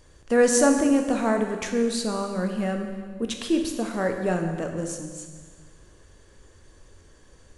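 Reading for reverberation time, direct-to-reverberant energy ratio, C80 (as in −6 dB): 1.6 s, 3.5 dB, 7.0 dB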